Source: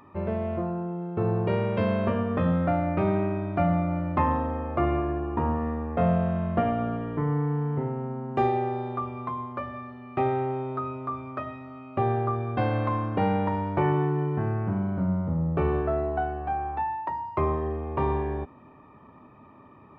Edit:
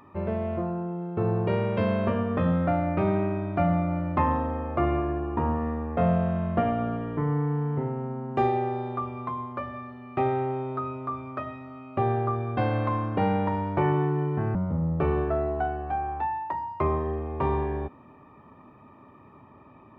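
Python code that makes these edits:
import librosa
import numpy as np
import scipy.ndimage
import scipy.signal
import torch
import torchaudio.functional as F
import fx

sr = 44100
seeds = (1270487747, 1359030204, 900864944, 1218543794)

y = fx.edit(x, sr, fx.cut(start_s=14.55, length_s=0.57), tone=tone)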